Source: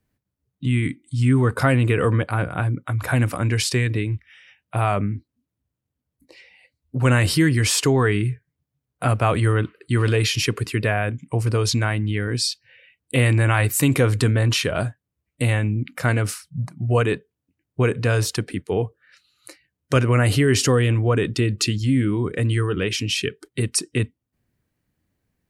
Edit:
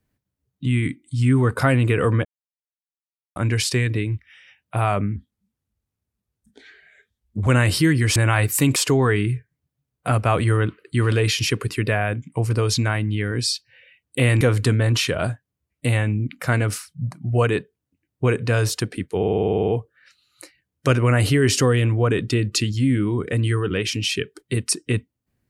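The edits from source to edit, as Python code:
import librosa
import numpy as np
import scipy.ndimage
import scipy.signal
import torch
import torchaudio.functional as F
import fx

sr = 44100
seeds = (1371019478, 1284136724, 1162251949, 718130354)

y = fx.edit(x, sr, fx.silence(start_s=2.25, length_s=1.11),
    fx.speed_span(start_s=5.16, length_s=1.87, speed=0.81),
    fx.move(start_s=13.37, length_s=0.6, to_s=7.72),
    fx.stutter(start_s=18.74, slice_s=0.05, count=11), tone=tone)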